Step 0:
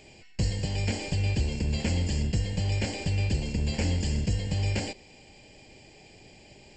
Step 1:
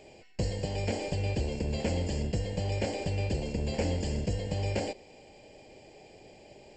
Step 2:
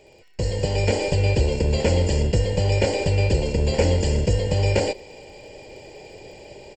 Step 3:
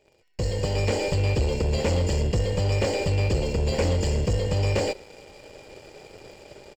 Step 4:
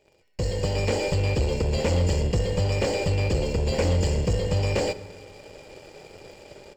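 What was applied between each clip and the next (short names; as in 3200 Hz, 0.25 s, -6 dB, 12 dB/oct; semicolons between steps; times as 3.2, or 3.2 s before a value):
bell 550 Hz +11 dB 1.6 oct; gain -5.5 dB
comb 2.1 ms, depth 38%; AGC gain up to 10 dB; crackle 29/s -47 dBFS
sample leveller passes 2; gain -9 dB
reverb RT60 2.0 s, pre-delay 3 ms, DRR 14 dB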